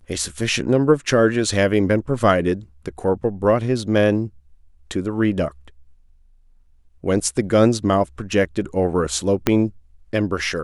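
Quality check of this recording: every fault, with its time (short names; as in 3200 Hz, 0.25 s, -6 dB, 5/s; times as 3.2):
9.47 pop -2 dBFS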